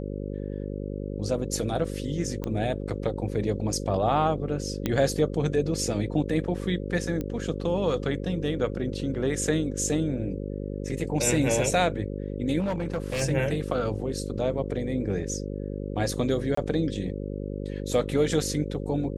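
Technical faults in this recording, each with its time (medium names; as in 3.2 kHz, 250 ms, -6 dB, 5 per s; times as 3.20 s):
buzz 50 Hz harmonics 11 -33 dBFS
2.44 s: pop -18 dBFS
4.86 s: pop -12 dBFS
7.21 s: pop -19 dBFS
12.59–13.22 s: clipped -24 dBFS
16.55–16.57 s: dropout 24 ms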